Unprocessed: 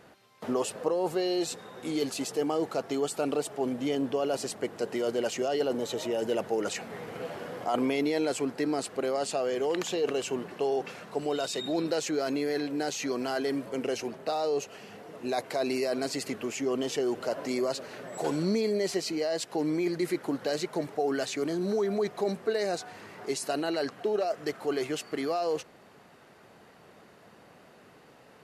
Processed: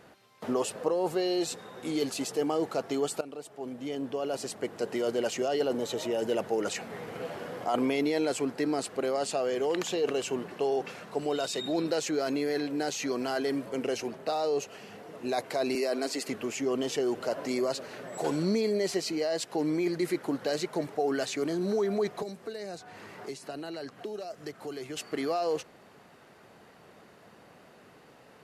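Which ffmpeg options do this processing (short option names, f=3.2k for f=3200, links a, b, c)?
-filter_complex "[0:a]asettb=1/sr,asplit=3[a][b][c];[a]atrim=end=15.754[d];[b]atrim=start=15.75:end=16.29,asetpts=PTS-STARTPTS,afade=t=in:d=0.004:c=qsin,afade=t=out:st=0.536:d=0.004:c=qsin,highpass=f=220:w=0.5412,highpass=f=220:w=1.3066[e];[c]atrim=start=16.286[f];[d][e]acrossfade=d=0.004:c1=hsin:c2=qsin[g];[g][f]acrossfade=d=0.004:c1=qsin:c2=hsin,asettb=1/sr,asplit=3[h][i][j];[h]atrim=end=22.224[k];[i]atrim=start=22.22:end=24.97,asetpts=PTS-STARTPTS,afade=t=in:d=0.004:c=qsin,afade=t=out:st=2.746:d=0.004:c=qsin,acrossover=split=210|3800[l][m][n];[l]acompressor=threshold=-47dB:ratio=4[o];[m]acompressor=threshold=-39dB:ratio=4[p];[n]acompressor=threshold=-52dB:ratio=4[q];[o][p][q]amix=inputs=3:normalize=0[r];[j]atrim=start=24.966[s];[k][r]acrossfade=d=0.004:c1=hsin:c2=qsin[t];[t][s]acrossfade=d=0.004:c1=qsin:c2=hsin,asplit=2[u][v];[u]atrim=end=3.21,asetpts=PTS-STARTPTS,afade=t=out:st=3.206:d=0.004:c=hsin:silence=0.16788[w];[v]atrim=start=3.21,asetpts=PTS-STARTPTS,afade=t=in:d=1.7:silence=0.16788[x];[w][x]concat=n=2:v=0:a=1"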